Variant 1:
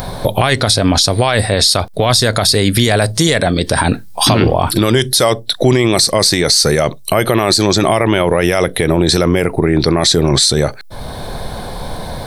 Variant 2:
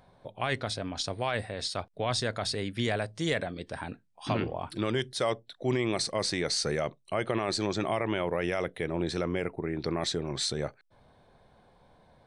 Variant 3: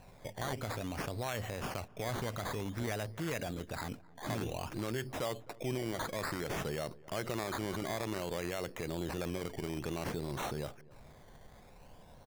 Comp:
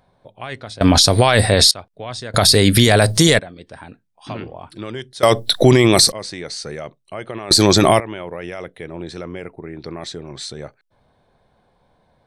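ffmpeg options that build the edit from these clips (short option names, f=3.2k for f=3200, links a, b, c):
-filter_complex "[0:a]asplit=4[a][b][c][d];[1:a]asplit=5[e][f][g][h][i];[e]atrim=end=0.812[j];[a]atrim=start=0.808:end=1.712[k];[f]atrim=start=1.708:end=2.342[l];[b]atrim=start=2.338:end=3.392[m];[g]atrim=start=3.388:end=5.232[n];[c]atrim=start=5.228:end=6.122[o];[h]atrim=start=6.118:end=7.512[p];[d]atrim=start=7.508:end=8.002[q];[i]atrim=start=7.998[r];[j][k]acrossfade=d=0.004:c1=hsin:c2=hsin[s];[s][l]acrossfade=d=0.004:c1=hsin:c2=hsin[t];[t][m]acrossfade=d=0.004:c1=hsin:c2=hsin[u];[u][n]acrossfade=d=0.004:c1=hsin:c2=hsin[v];[v][o]acrossfade=d=0.004:c1=hsin:c2=hsin[w];[w][p]acrossfade=d=0.004:c1=hsin:c2=hsin[x];[x][q]acrossfade=d=0.004:c1=hsin:c2=hsin[y];[y][r]acrossfade=d=0.004:c1=hsin:c2=hsin"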